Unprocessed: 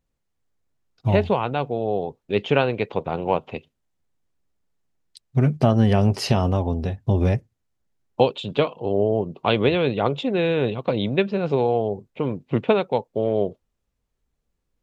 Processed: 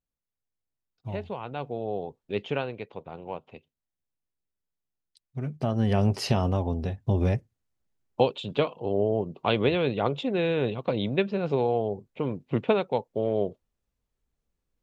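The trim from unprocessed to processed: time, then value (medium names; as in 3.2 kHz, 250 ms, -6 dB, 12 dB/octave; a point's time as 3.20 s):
1.29 s -15 dB
1.70 s -7.5 dB
2.33 s -7.5 dB
2.93 s -14.5 dB
5.40 s -14.5 dB
6.00 s -4.5 dB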